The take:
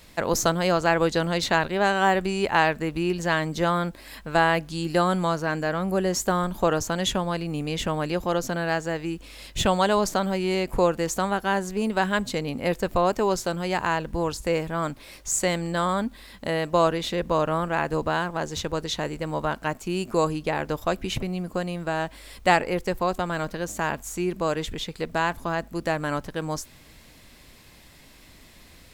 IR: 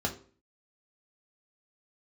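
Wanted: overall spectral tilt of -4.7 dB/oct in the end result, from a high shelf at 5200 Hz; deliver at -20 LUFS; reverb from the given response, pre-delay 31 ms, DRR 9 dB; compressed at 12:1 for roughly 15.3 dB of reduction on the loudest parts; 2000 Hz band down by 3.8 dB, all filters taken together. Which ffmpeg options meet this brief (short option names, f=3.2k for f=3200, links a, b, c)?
-filter_complex "[0:a]equalizer=f=2k:t=o:g=-5.5,highshelf=f=5.2k:g=3,acompressor=threshold=-31dB:ratio=12,asplit=2[a][b];[1:a]atrim=start_sample=2205,adelay=31[c];[b][c]afir=irnorm=-1:irlink=0,volume=-15.5dB[d];[a][d]amix=inputs=2:normalize=0,volume=15.5dB"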